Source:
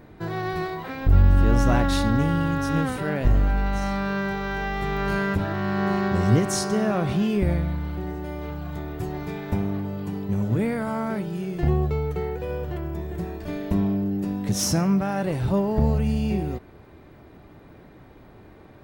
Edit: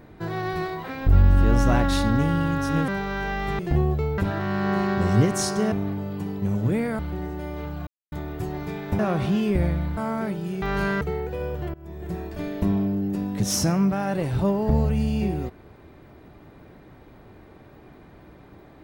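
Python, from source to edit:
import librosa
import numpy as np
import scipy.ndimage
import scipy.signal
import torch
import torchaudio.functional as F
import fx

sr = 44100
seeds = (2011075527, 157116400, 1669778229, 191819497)

y = fx.edit(x, sr, fx.cut(start_s=2.88, length_s=1.34),
    fx.swap(start_s=4.93, length_s=0.39, other_s=11.51, other_length_s=0.59),
    fx.swap(start_s=6.86, length_s=0.98, other_s=9.59, other_length_s=1.27),
    fx.insert_silence(at_s=8.72, length_s=0.25),
    fx.fade_in_from(start_s=12.83, length_s=0.42, floor_db=-22.5), tone=tone)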